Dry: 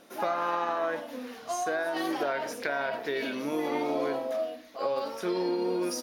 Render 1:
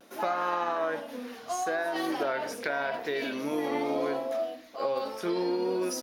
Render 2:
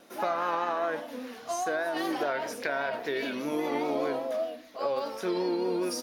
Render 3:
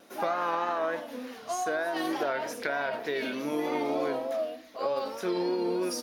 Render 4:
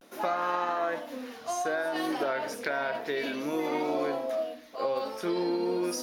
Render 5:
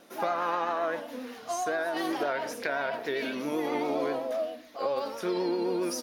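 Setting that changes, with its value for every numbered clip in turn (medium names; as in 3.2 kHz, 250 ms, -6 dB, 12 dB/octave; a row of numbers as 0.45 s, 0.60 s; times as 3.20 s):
vibrato, rate: 0.73 Hz, 5 Hz, 3.3 Hz, 0.34 Hz, 7.6 Hz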